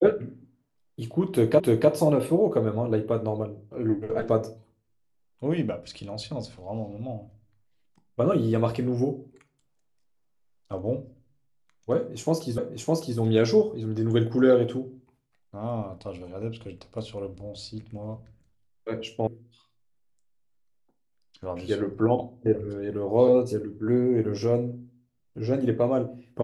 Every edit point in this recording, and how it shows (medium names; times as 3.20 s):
1.60 s: repeat of the last 0.3 s
12.58 s: repeat of the last 0.61 s
19.27 s: sound stops dead